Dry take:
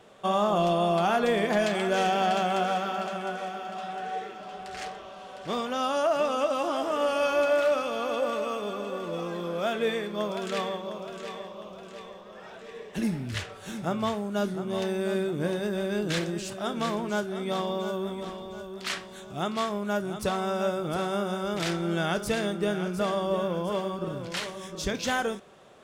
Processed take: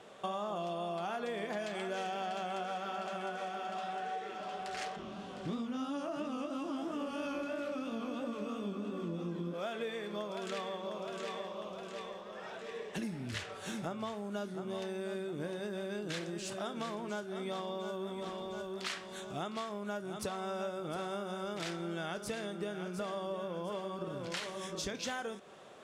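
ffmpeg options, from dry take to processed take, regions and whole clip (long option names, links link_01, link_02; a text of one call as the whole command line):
ffmpeg -i in.wav -filter_complex "[0:a]asettb=1/sr,asplit=3[link_01][link_02][link_03];[link_01]atrim=end=4.964[link_04];[link_02]atrim=start=4.96:end=9.54,asetpts=PTS-STARTPTS,afade=type=in:duration=0.004:curve=qsin,afade=type=out:start_time=4.576:duration=0.004:curve=qsin,lowshelf=frequency=380:width_type=q:width=1.5:gain=12,flanger=delay=17.5:depth=6.5:speed=3[link_05];[link_03]atrim=start=9.536[link_06];[link_04][link_05]acrossfade=duration=0.004:curve1=hsin:curve2=qsin[link_07];[link_07][link_06]acrossfade=duration=0.004:curve1=qsin:curve2=hsin,lowpass=12000,lowshelf=frequency=97:gain=-12,acompressor=threshold=-36dB:ratio=6" out.wav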